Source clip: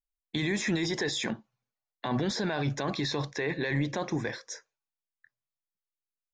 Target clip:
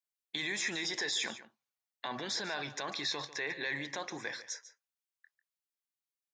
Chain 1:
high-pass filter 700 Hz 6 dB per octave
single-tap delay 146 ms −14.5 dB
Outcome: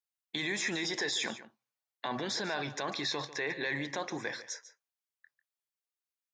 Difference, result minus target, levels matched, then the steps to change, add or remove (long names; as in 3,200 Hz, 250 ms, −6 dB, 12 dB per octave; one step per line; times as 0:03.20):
500 Hz band +3.5 dB
change: high-pass filter 1,400 Hz 6 dB per octave